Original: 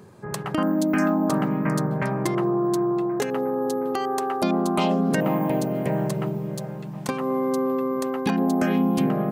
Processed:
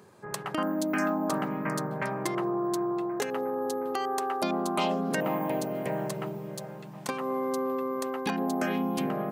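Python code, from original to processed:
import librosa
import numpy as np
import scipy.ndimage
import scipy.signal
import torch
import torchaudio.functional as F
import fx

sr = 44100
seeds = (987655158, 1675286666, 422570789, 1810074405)

y = fx.low_shelf(x, sr, hz=270.0, db=-11.5)
y = y * 10.0 ** (-2.5 / 20.0)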